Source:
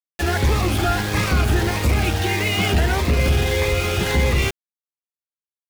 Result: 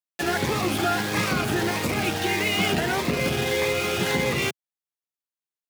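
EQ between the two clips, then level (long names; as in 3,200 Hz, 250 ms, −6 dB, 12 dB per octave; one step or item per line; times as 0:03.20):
high-pass filter 130 Hz 24 dB per octave
−2.0 dB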